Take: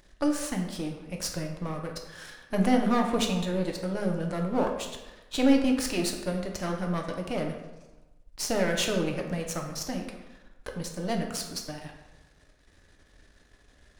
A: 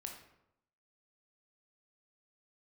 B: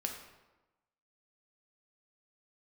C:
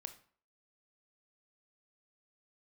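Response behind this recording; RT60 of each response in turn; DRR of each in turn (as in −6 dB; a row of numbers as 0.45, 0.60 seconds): B; 0.85, 1.1, 0.50 seconds; 2.0, 2.0, 8.0 decibels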